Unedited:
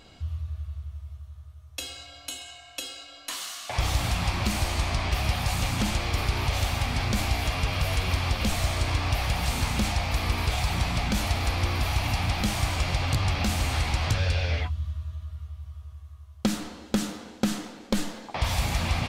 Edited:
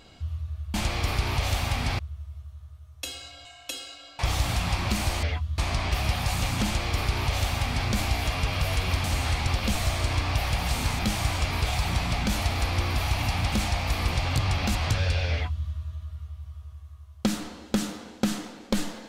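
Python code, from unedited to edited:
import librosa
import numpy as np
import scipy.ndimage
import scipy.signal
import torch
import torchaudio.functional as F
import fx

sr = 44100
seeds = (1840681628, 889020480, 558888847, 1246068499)

y = fx.edit(x, sr, fx.cut(start_s=2.2, length_s=0.34),
    fx.cut(start_s=3.28, length_s=0.46),
    fx.duplicate(start_s=5.84, length_s=1.25, to_s=0.74),
    fx.swap(start_s=9.76, length_s=0.6, other_s=12.37, other_length_s=0.52),
    fx.move(start_s=13.52, length_s=0.43, to_s=8.24),
    fx.duplicate(start_s=14.52, length_s=0.35, to_s=4.78), tone=tone)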